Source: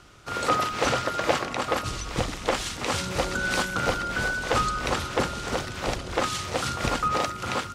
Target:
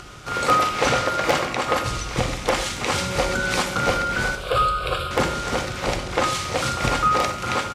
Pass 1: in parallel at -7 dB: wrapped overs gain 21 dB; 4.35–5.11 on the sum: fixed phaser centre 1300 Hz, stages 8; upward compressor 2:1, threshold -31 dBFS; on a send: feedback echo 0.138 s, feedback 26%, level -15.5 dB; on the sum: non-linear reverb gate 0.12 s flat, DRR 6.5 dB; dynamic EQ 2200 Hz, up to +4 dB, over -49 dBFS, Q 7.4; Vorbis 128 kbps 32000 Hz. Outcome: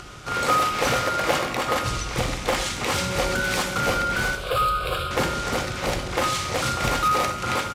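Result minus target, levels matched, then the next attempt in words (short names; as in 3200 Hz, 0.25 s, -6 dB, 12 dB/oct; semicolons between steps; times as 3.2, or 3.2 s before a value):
wrapped overs: distortion +19 dB
in parallel at -7 dB: wrapped overs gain 10 dB; 4.35–5.11 on the sum: fixed phaser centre 1300 Hz, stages 8; upward compressor 2:1, threshold -31 dBFS; on a send: feedback echo 0.138 s, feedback 26%, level -15.5 dB; on the sum: non-linear reverb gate 0.12 s flat, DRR 6.5 dB; dynamic EQ 2200 Hz, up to +4 dB, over -49 dBFS, Q 7.4; Vorbis 128 kbps 32000 Hz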